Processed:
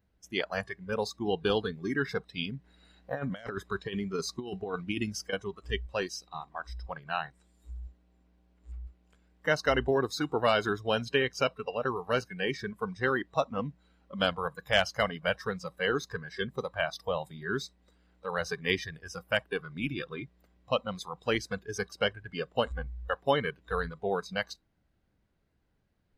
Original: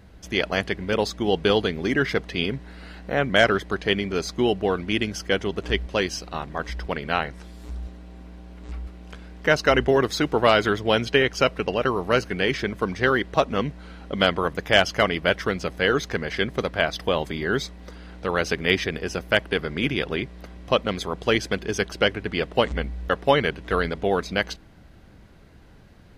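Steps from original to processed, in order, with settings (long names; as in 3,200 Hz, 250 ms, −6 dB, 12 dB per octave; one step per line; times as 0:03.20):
noise reduction from a noise print of the clip's start 17 dB
0:02.64–0:05.33: compressor whose output falls as the input rises −25 dBFS, ratio −0.5
level −7.5 dB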